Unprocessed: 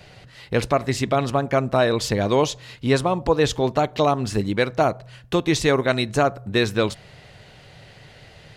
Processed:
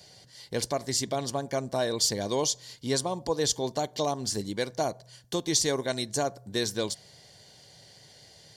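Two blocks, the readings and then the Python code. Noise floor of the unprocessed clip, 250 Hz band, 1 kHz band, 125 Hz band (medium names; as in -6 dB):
-48 dBFS, -10.0 dB, -10.5 dB, -12.0 dB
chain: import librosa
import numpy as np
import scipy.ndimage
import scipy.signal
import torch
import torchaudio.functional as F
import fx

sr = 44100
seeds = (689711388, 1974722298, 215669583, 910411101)

y = fx.high_shelf_res(x, sr, hz=3600.0, db=12.5, q=1.5)
y = fx.notch_comb(y, sr, f0_hz=1300.0)
y = y * librosa.db_to_amplitude(-9.0)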